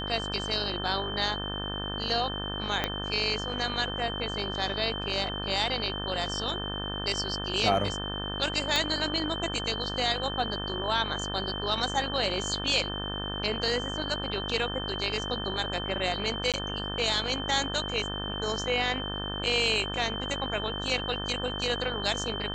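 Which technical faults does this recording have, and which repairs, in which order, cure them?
buzz 50 Hz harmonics 36 -36 dBFS
tone 3100 Hz -35 dBFS
2.84 pop -12 dBFS
8.76 pop -10 dBFS
16.52–16.54 gap 17 ms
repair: de-click; de-hum 50 Hz, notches 36; notch 3100 Hz, Q 30; interpolate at 16.52, 17 ms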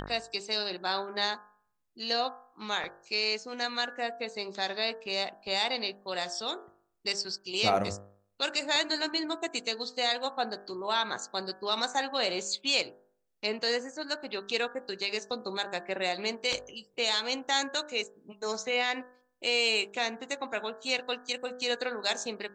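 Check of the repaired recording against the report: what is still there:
2.84 pop
8.76 pop

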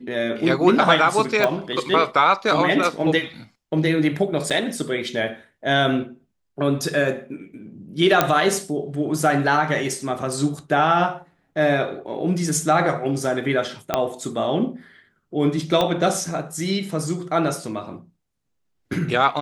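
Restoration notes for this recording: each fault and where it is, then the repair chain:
1.44 pop -7 dBFS
4.5–4.51 gap 6.8 ms
8.21 pop -1 dBFS
13.94 pop -5 dBFS
15.81 pop -8 dBFS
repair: de-click; interpolate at 4.5, 6.8 ms

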